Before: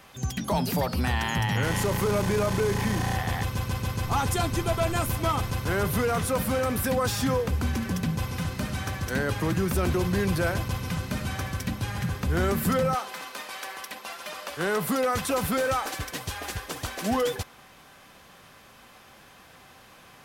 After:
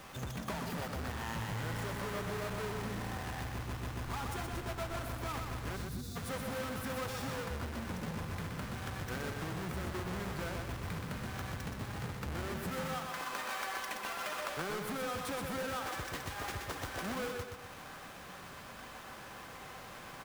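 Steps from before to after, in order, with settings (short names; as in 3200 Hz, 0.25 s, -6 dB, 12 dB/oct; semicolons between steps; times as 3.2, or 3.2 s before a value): half-waves squared off; compressor 8:1, threshold -36 dBFS, peak gain reduction 17.5 dB; spectral gain 5.77–6.16, 380–3400 Hz -20 dB; on a send: feedback echo 0.124 s, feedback 46%, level -5 dB; on the sum: dynamic EQ 1400 Hz, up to +5 dB, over -50 dBFS, Q 0.83; gain -4.5 dB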